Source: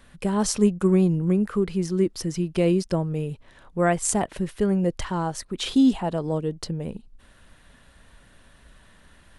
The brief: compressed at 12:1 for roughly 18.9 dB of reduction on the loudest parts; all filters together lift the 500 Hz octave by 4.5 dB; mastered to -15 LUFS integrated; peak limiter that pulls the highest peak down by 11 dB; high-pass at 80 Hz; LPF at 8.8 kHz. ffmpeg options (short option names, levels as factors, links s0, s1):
-af "highpass=80,lowpass=8800,equalizer=f=500:t=o:g=6,acompressor=threshold=0.0251:ratio=12,volume=15.8,alimiter=limit=0.531:level=0:latency=1"